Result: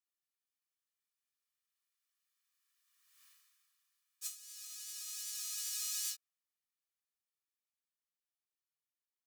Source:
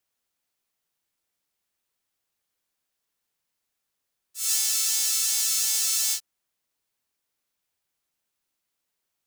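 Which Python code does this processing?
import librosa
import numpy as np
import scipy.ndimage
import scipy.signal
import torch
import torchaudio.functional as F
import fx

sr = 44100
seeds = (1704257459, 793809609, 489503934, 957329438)

y = fx.doppler_pass(x, sr, speed_mps=18, closest_m=1.6, pass_at_s=3.26)
y = scipy.signal.sosfilt(scipy.signal.butter(6, 1100.0, 'highpass', fs=sr, output='sos'), y)
y = y + 0.57 * np.pad(y, (int(1.7 * sr / 1000.0), 0))[:len(y)]
y = fx.over_compress(y, sr, threshold_db=-53.0, ratio=-0.5)
y = y * 10.0 ** (11.0 / 20.0)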